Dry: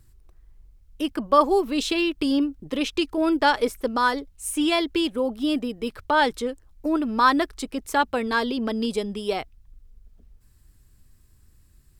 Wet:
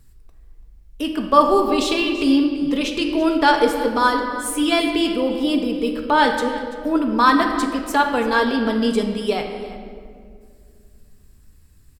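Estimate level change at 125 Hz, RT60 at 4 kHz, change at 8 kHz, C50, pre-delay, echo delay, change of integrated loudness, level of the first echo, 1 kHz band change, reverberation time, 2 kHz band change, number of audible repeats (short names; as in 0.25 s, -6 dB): n/a, 1.3 s, +3.5 dB, 5.0 dB, 4 ms, 0.336 s, +5.0 dB, -16.0 dB, +5.0 dB, 2.2 s, +4.5 dB, 1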